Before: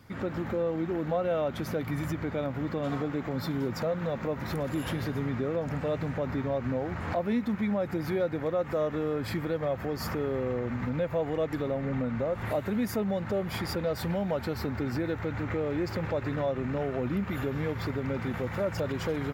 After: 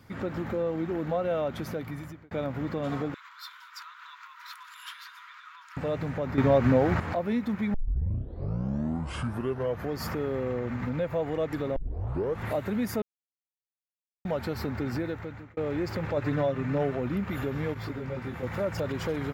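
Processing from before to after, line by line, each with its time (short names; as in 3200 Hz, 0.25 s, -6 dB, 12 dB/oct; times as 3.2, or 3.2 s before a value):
1.27–2.31 fade out equal-power
3.14–5.77 rippled Chebyshev high-pass 960 Hz, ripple 6 dB
6.38–7 gain +9 dB
7.74 tape start 2.19 s
11.76 tape start 0.63 s
13.02–14.25 mute
14.97–15.57 fade out
16.16–16.95 comb 6.8 ms
17.74–18.43 detuned doubles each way 16 cents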